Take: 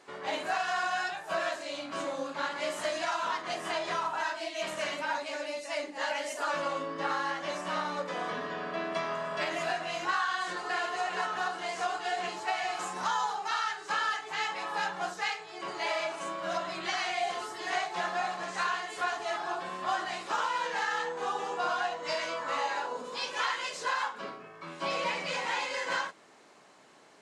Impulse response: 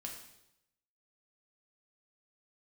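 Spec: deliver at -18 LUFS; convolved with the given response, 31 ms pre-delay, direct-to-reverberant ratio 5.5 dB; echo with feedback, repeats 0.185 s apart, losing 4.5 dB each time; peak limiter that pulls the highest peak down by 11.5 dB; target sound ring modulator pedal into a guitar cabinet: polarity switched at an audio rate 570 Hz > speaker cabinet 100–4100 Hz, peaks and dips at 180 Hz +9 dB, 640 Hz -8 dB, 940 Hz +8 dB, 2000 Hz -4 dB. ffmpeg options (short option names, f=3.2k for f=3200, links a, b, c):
-filter_complex "[0:a]alimiter=level_in=5dB:limit=-24dB:level=0:latency=1,volume=-5dB,aecho=1:1:185|370|555|740|925|1110|1295|1480|1665:0.596|0.357|0.214|0.129|0.0772|0.0463|0.0278|0.0167|0.01,asplit=2[a][b];[1:a]atrim=start_sample=2205,adelay=31[c];[b][c]afir=irnorm=-1:irlink=0,volume=-3dB[d];[a][d]amix=inputs=2:normalize=0,aeval=exprs='val(0)*sgn(sin(2*PI*570*n/s))':c=same,highpass=100,equalizer=f=180:t=q:w=4:g=9,equalizer=f=640:t=q:w=4:g=-8,equalizer=f=940:t=q:w=4:g=8,equalizer=f=2k:t=q:w=4:g=-4,lowpass=f=4.1k:w=0.5412,lowpass=f=4.1k:w=1.3066,volume=16dB"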